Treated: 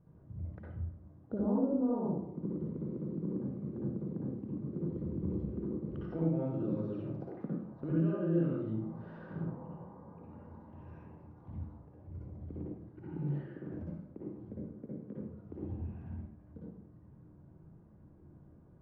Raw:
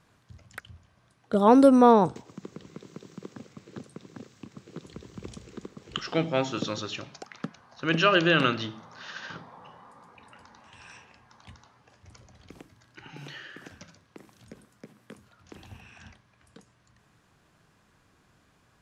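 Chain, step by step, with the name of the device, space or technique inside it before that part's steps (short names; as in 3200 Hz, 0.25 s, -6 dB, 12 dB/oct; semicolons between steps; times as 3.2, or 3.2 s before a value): television next door (compressor 4:1, threshold -37 dBFS, peak gain reduction 20.5 dB; LPF 390 Hz 12 dB/oct; reverb RT60 0.75 s, pre-delay 53 ms, DRR -6 dB); gain +1.5 dB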